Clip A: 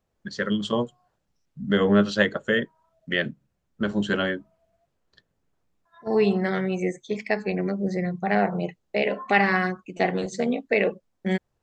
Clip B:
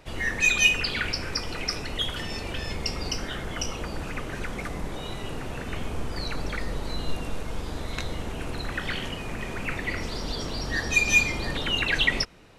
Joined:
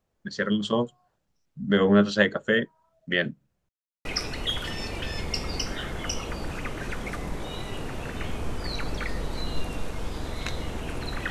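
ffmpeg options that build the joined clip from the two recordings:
-filter_complex "[0:a]apad=whole_dur=11.3,atrim=end=11.3,asplit=2[a][b];[a]atrim=end=3.69,asetpts=PTS-STARTPTS,afade=t=out:st=3.686:d=0.004:c=hsin[c];[b]atrim=start=3.69:end=4.05,asetpts=PTS-STARTPTS,volume=0[d];[1:a]atrim=start=1.57:end=8.82,asetpts=PTS-STARTPTS,afade=t=in:d=0.004:c=hsin[e];[c][d][e]concat=n=3:v=0:a=1"

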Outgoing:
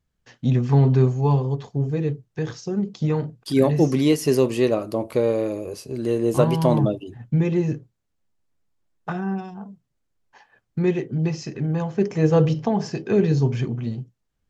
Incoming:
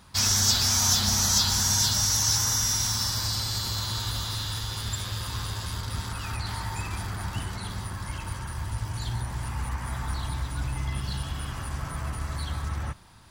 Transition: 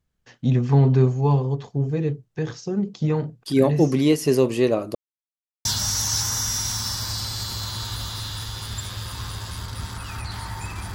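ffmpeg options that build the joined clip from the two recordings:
-filter_complex "[0:a]apad=whole_dur=10.94,atrim=end=10.94,asplit=2[a][b];[a]atrim=end=4.95,asetpts=PTS-STARTPTS,afade=t=out:st=4.946:d=0.004:c=hsin[c];[b]atrim=start=4.95:end=5.65,asetpts=PTS-STARTPTS,volume=0[d];[1:a]atrim=start=1.8:end=7.09,asetpts=PTS-STARTPTS,afade=t=in:d=0.004:c=hsin[e];[c][d][e]concat=n=3:v=0:a=1"

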